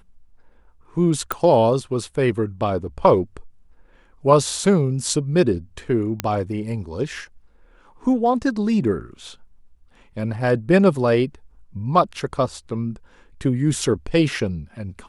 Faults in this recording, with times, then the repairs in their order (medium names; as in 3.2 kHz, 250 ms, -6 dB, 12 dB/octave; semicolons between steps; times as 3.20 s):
1.32 s: pop -8 dBFS
6.20 s: pop -6 dBFS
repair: de-click